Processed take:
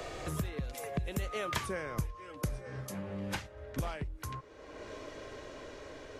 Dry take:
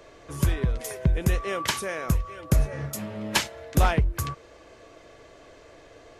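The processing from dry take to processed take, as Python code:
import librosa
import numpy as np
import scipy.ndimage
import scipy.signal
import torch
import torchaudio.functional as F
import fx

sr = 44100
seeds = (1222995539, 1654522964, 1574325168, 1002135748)

y = fx.doppler_pass(x, sr, speed_mps=27, closest_m=3.6, pass_at_s=1.65)
y = fx.band_squash(y, sr, depth_pct=100)
y = y * librosa.db_to_amplitude(2.0)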